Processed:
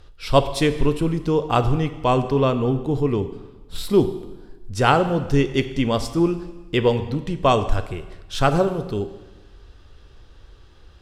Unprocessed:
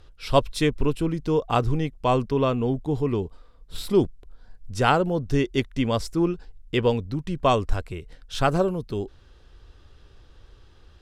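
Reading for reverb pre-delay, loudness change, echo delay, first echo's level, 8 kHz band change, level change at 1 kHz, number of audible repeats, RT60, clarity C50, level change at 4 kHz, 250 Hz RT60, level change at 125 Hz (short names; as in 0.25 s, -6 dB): 7 ms, +3.5 dB, none, none, +3.5 dB, +3.5 dB, none, 1.2 s, 12.0 dB, +3.5 dB, 1.2 s, +3.5 dB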